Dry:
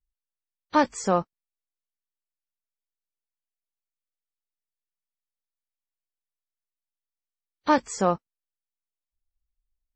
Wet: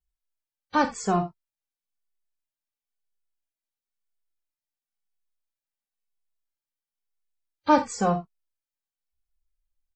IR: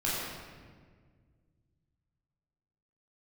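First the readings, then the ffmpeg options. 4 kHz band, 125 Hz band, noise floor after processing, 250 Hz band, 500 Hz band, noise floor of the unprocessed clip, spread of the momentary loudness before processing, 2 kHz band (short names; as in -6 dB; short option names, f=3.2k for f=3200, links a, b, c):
-0.5 dB, +3.0 dB, under -85 dBFS, +1.0 dB, -1.5 dB, under -85 dBFS, 10 LU, 0.0 dB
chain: -filter_complex "[0:a]asplit=2[a][b];[1:a]atrim=start_sample=2205,atrim=end_sample=3969[c];[b][c]afir=irnorm=-1:irlink=0,volume=-11dB[d];[a][d]amix=inputs=2:normalize=0,asplit=2[e][f];[f]adelay=2.3,afreqshift=-0.98[g];[e][g]amix=inputs=2:normalize=1"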